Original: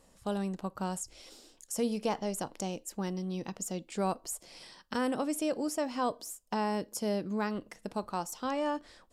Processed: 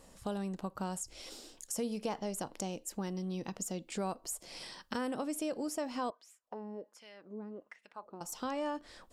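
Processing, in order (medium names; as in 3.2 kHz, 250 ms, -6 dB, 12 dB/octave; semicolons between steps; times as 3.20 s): compression 2:1, threshold -45 dBFS, peak gain reduction 10.5 dB; 6.10–8.21 s: LFO band-pass sine 1.3 Hz 270–2500 Hz; trim +4.5 dB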